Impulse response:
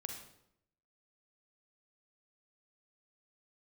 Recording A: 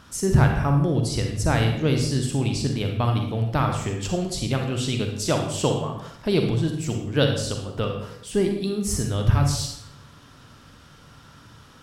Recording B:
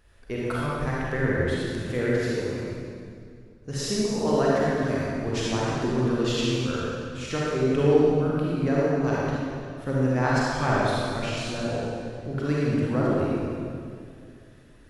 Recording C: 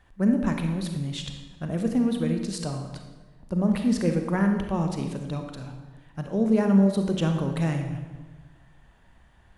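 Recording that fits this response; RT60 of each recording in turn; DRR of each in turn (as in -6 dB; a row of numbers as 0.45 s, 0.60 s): A; 0.75 s, 2.3 s, 1.3 s; 3.0 dB, -6.5 dB, 4.5 dB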